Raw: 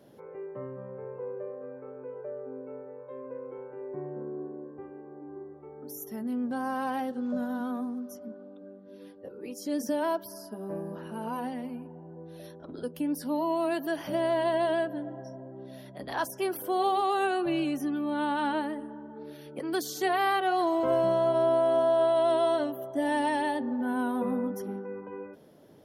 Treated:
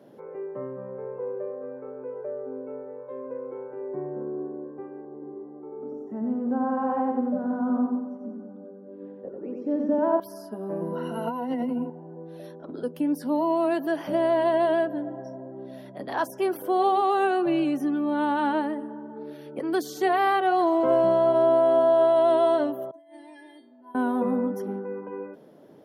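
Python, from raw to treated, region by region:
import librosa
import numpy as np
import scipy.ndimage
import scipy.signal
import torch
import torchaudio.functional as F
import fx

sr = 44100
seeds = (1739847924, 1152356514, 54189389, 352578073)

y = fx.chain(x, sr, fx.lowpass(hz=1100.0, slope=12),
    fx.echo_feedback(ms=91, feedback_pct=51, wet_db=-3), at=(5.05, 10.2))
y = fx.chain(y, sr, fx.ripple_eq(per_octave=2.0, db=16),
    fx.over_compress(threshold_db=-32.0, ratio=-1.0), at=(10.81, 11.9))
y = fx.chain(y, sr, fx.stiff_resonator(f0_hz=330.0, decay_s=0.5, stiffness=0.002),
    fx.over_compress(threshold_db=-50.0, ratio=-0.5), at=(22.91, 23.95))
y = scipy.signal.sosfilt(scipy.signal.butter(2, 170.0, 'highpass', fs=sr, output='sos'), y)
y = fx.high_shelf(y, sr, hz=2300.0, db=-10.0)
y = y * librosa.db_to_amplitude(5.5)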